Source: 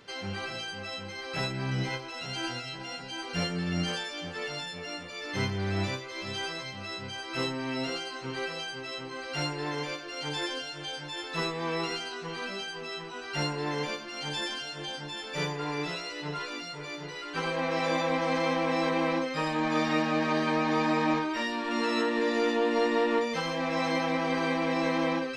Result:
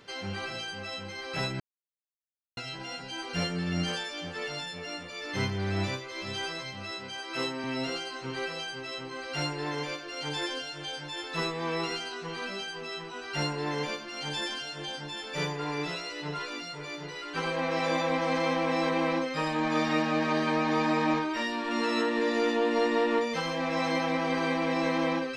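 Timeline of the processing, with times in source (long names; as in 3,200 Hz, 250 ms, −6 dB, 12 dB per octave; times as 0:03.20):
0:01.60–0:02.57: silence
0:06.91–0:07.64: Bessel high-pass filter 220 Hz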